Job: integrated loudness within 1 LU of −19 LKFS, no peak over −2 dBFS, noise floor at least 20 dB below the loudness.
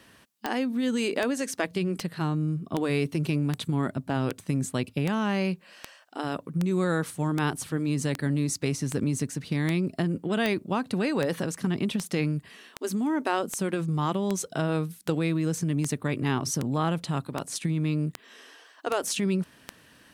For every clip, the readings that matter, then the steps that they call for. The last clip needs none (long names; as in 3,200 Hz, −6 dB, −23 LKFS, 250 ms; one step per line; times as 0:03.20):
number of clicks 26; integrated loudness −28.5 LKFS; sample peak −10.0 dBFS; target loudness −19.0 LKFS
→ click removal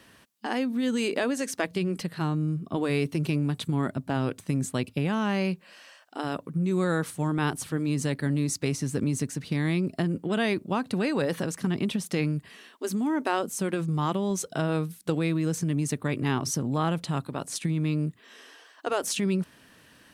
number of clicks 0; integrated loudness −28.5 LKFS; sample peak −12.5 dBFS; target loudness −19.0 LKFS
→ level +9.5 dB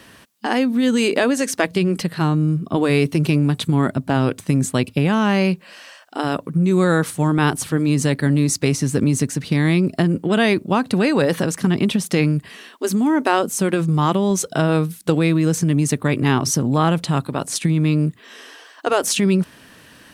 integrated loudness −19.0 LKFS; sample peak −3.0 dBFS; background noise floor −47 dBFS